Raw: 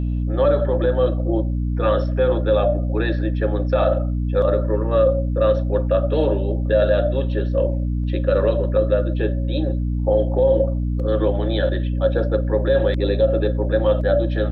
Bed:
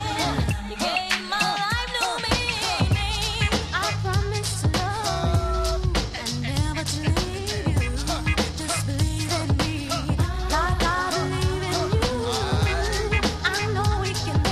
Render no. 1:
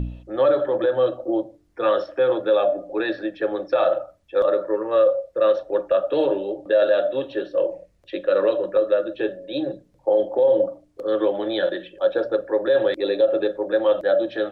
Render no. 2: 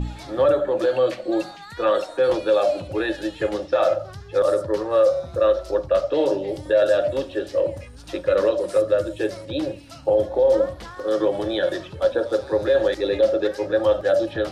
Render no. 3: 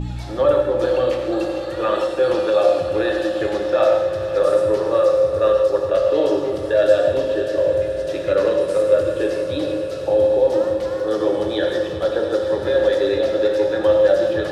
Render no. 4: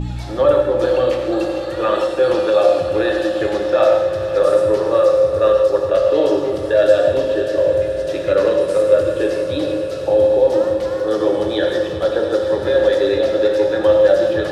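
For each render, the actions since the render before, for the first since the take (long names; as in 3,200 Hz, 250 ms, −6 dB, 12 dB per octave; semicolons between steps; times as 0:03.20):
hum removal 60 Hz, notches 5
mix in bed −16 dB
echo that builds up and dies away 100 ms, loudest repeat 5, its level −17 dB; reverb whose tail is shaped and stops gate 190 ms flat, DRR 2.5 dB
level +2.5 dB; brickwall limiter −2 dBFS, peak gain reduction 1 dB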